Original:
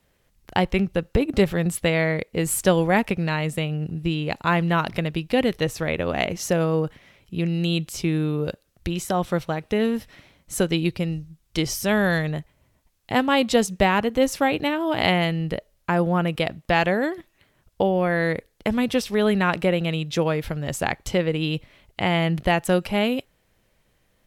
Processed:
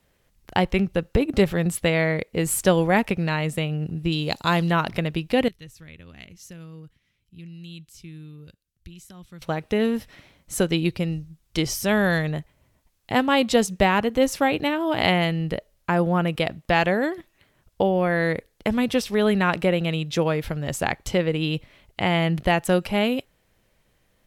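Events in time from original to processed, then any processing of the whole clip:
4.12–4.71 resonant high shelf 3100 Hz +8 dB, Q 1.5
5.48–9.42 passive tone stack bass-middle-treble 6-0-2

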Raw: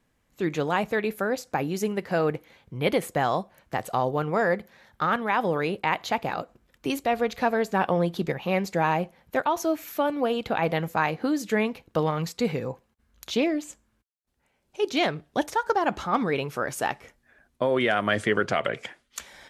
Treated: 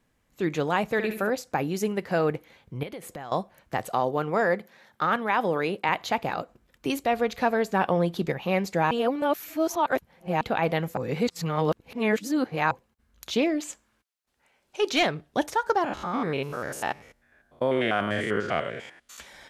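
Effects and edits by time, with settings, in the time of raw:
0.84–1.3 flutter echo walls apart 11.9 m, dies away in 0.5 s
2.83–3.32 compressor 5:1, threshold -36 dBFS
3.92–5.89 HPF 160 Hz
8.91–10.41 reverse
10.97–12.71 reverse
13.6–15.03 overdrive pedal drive 11 dB, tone 7600 Hz, clips at -13 dBFS
15.84–19.19 stepped spectrum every 0.1 s

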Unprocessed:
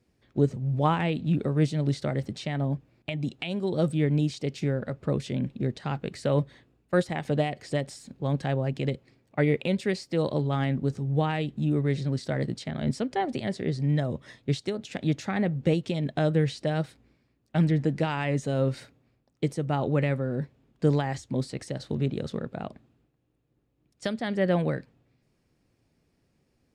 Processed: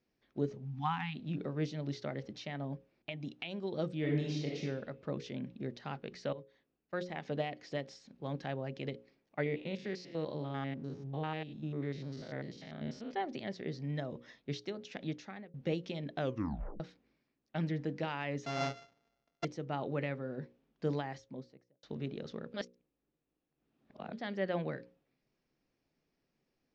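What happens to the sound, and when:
0.64–1.16 spectral delete 280–730 Hz
3.98–4.6 reverb throw, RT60 0.94 s, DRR -2 dB
6.33–7.27 fade in, from -18.5 dB
9.46–13.14 stepped spectrum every 0.1 s
15.01–15.54 fade out
16.19 tape stop 0.61 s
18.46–19.45 sample sorter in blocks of 64 samples
20.92–21.83 studio fade out
22.54–24.13 reverse
whole clip: elliptic low-pass 6100 Hz, stop band 60 dB; bell 85 Hz -13 dB 1.2 oct; notches 60/120/180/240/300/360/420/480/540 Hz; gain -7.5 dB

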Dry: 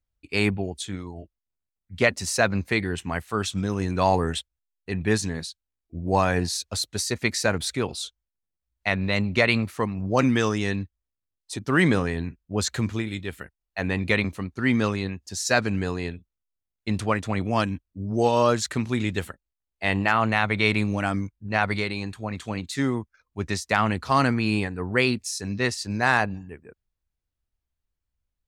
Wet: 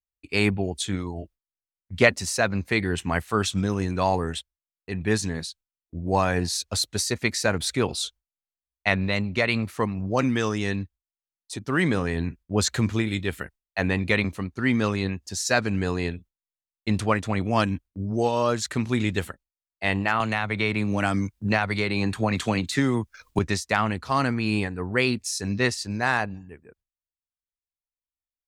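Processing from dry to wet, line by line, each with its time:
20.2–23.39 three-band squash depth 100%
whole clip: gate with hold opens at -46 dBFS; vocal rider within 5 dB 0.5 s

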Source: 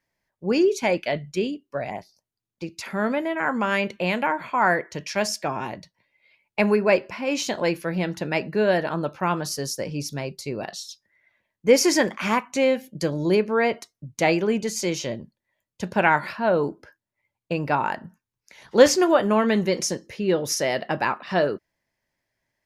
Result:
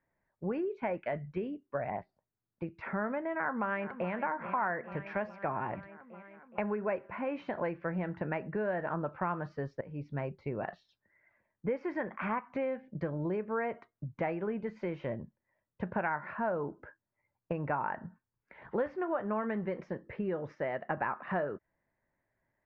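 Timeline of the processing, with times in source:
3.33–4.12 echo throw 0.42 s, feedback 70%, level -14.5 dB
9.81–10.24 fade in, from -19.5 dB
20.55–20.97 upward expander, over -35 dBFS
whole clip: compressor 5:1, threshold -28 dBFS; LPF 1800 Hz 24 dB/oct; dynamic EQ 310 Hz, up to -5 dB, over -44 dBFS, Q 0.71

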